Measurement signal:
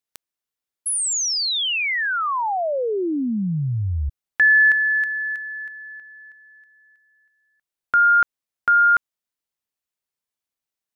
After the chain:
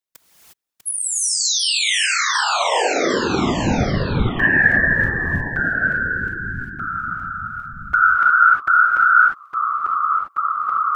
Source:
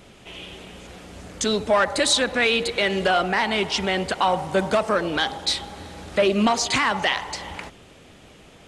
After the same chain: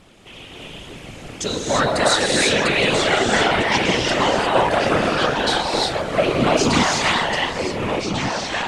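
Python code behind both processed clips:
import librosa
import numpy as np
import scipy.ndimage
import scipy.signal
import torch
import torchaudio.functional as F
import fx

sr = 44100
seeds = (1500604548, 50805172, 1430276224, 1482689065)

y = fx.rev_gated(x, sr, seeds[0], gate_ms=380, shape='rising', drr_db=-2.5)
y = fx.echo_pitch(y, sr, ms=627, semitones=-2, count=3, db_per_echo=-6.0)
y = fx.whisperise(y, sr, seeds[1])
y = F.gain(torch.from_numpy(y), -1.5).numpy()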